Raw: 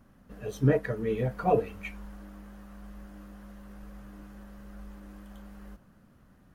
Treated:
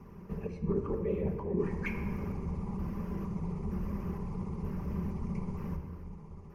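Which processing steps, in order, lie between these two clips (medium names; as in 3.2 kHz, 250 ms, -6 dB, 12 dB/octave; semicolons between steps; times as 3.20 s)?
pitch shift switched off and on -6.5 st, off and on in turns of 464 ms; treble shelf 2.1 kHz -11 dB; reverse; compression 20:1, threshold -40 dBFS, peak gain reduction 22.5 dB; reverse; whisper effect; rippled EQ curve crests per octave 0.81, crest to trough 11 dB; simulated room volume 3100 m³, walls mixed, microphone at 1.2 m; trim +7.5 dB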